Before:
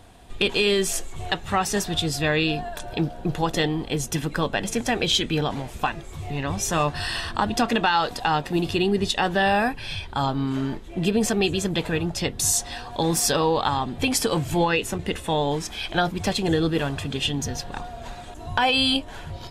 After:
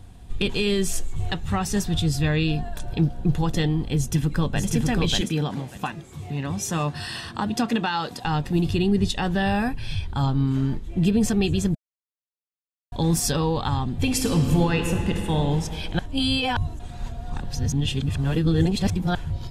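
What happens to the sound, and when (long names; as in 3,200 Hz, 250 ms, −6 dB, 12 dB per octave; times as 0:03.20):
0:03.96–0:04.71: delay throw 590 ms, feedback 20%, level −2.5 dB
0:05.21–0:08.25: high-pass filter 170 Hz
0:11.75–0:12.92: silence
0:14.00–0:15.37: thrown reverb, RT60 2.8 s, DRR 3.5 dB
0:15.99–0:19.15: reverse
whole clip: bass and treble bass +14 dB, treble +3 dB; notch filter 640 Hz, Q 13; level −5.5 dB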